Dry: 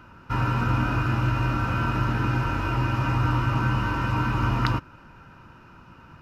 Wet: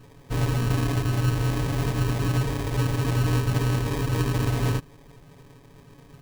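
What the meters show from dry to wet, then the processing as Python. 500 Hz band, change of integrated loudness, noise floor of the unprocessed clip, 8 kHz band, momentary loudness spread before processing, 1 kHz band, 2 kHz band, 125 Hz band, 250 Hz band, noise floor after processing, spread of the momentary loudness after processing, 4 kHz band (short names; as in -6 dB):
+4.5 dB, -0.5 dB, -50 dBFS, n/a, 2 LU, -7.5 dB, -5.5 dB, +1.0 dB, -0.5 dB, -51 dBFS, 3 LU, +2.0 dB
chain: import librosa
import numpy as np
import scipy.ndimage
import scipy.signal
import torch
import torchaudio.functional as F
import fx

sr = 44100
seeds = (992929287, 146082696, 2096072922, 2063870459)

y = x + 0.98 * np.pad(x, (int(7.2 * sr / 1000.0), 0))[:len(x)]
y = fx.sample_hold(y, sr, seeds[0], rate_hz=1400.0, jitter_pct=0)
y = F.gain(torch.from_numpy(y), -4.0).numpy()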